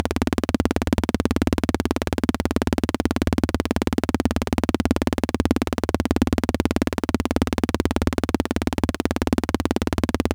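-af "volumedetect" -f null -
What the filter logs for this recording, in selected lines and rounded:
mean_volume: -22.2 dB
max_volume: -2.5 dB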